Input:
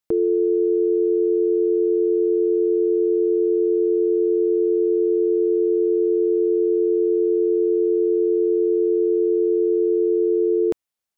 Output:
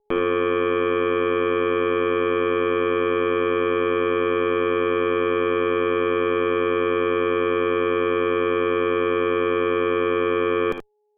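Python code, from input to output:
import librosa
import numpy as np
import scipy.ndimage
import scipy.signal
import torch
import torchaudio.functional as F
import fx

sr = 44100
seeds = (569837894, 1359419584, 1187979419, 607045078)

y = x + 10.0 ** (-48.0 / 20.0) * np.sin(2.0 * np.pi * 420.0 * np.arange(len(x)) / sr)
y = fx.cheby_harmonics(y, sr, harmonics=(3, 5, 8), levels_db=(-10, -44, -17), full_scale_db=-12.0)
y = fx.room_early_taps(y, sr, ms=(55, 79), db=(-10.0, -9.0))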